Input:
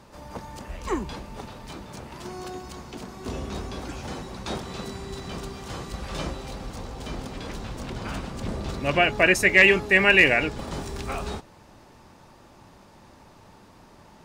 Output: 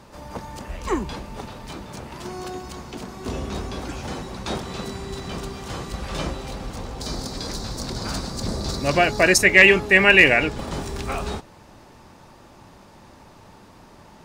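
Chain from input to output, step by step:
0:07.01–0:09.38: high shelf with overshoot 3,600 Hz +6.5 dB, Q 3
level +3.5 dB

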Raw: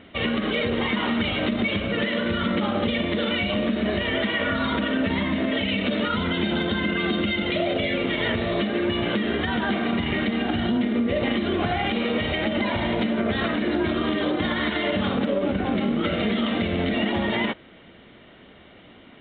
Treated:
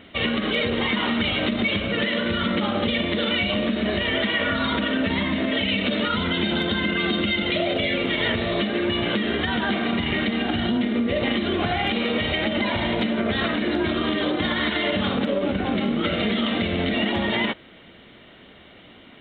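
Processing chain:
high-shelf EQ 3,500 Hz +8.5 dB

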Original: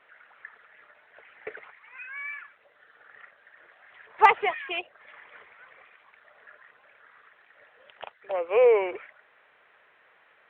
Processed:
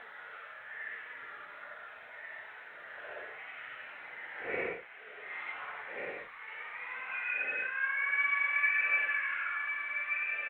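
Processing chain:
gate with flip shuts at −24 dBFS, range −29 dB
echo with shifted repeats 285 ms, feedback 61%, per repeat +33 Hz, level −6.5 dB
extreme stretch with random phases 5.1×, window 0.10 s, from 0:00.57
level +6.5 dB

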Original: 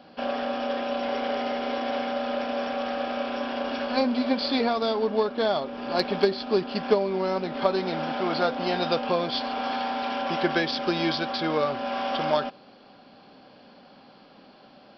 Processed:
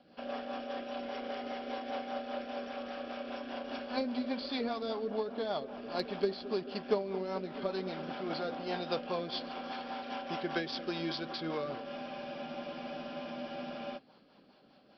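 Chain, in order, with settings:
bucket-brigade delay 219 ms, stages 2,048, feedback 70%, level −15 dB
rotating-speaker cabinet horn 5 Hz
frozen spectrum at 0:11.90, 2.06 s
level −8.5 dB

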